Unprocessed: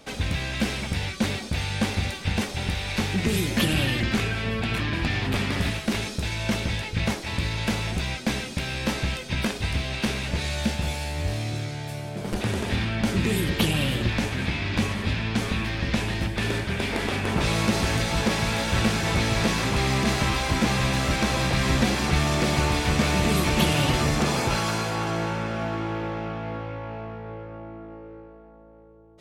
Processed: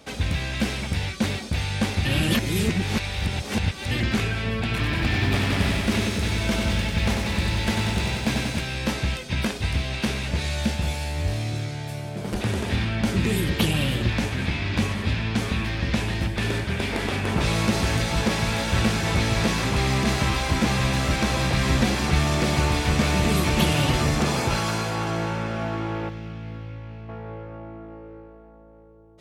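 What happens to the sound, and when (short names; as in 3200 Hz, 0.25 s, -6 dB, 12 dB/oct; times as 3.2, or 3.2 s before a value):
2.05–3.91 reverse
4.7–8.61 lo-fi delay 94 ms, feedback 80%, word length 9-bit, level -5 dB
26.09–27.09 bell 790 Hz -13.5 dB 2.5 oct
whole clip: HPF 47 Hz; low shelf 76 Hz +6.5 dB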